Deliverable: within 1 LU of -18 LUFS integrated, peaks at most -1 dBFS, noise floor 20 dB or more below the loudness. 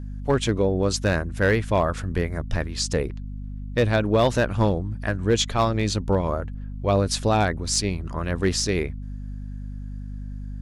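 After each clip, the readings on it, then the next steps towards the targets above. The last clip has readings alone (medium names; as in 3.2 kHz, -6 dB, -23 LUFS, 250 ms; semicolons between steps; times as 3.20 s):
clipped samples 0.4%; clipping level -12.0 dBFS; hum 50 Hz; highest harmonic 250 Hz; hum level -30 dBFS; loudness -23.5 LUFS; peak level -12.0 dBFS; loudness target -18.0 LUFS
-> clip repair -12 dBFS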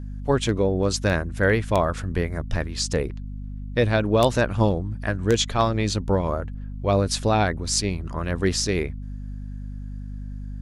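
clipped samples 0.0%; hum 50 Hz; highest harmonic 250 Hz; hum level -30 dBFS
-> de-hum 50 Hz, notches 5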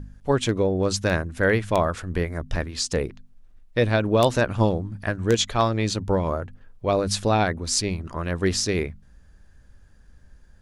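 hum not found; loudness -24.0 LUFS; peak level -3.0 dBFS; loudness target -18.0 LUFS
-> trim +6 dB; peak limiter -1 dBFS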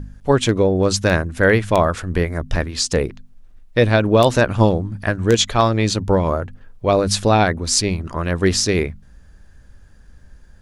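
loudness -18.0 LUFS; peak level -1.0 dBFS; noise floor -47 dBFS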